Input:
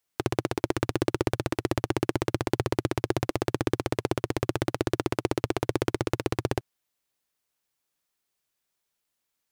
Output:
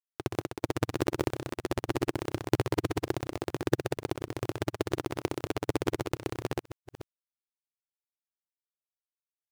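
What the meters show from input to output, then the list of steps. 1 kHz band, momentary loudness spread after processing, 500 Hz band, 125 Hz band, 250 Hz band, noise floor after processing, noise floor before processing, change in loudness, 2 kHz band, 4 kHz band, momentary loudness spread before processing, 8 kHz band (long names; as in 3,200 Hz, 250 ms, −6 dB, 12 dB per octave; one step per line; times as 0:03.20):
−4.5 dB, 6 LU, −4.0 dB, −4.0 dB, −4.0 dB, below −85 dBFS, −81 dBFS, −4.0 dB, −4.0 dB, −4.0 dB, 2 LU, −4.0 dB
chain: delay that plays each chunk backwards 306 ms, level −5 dB
log-companded quantiser 6 bits
expander for the loud parts 2.5 to 1, over −35 dBFS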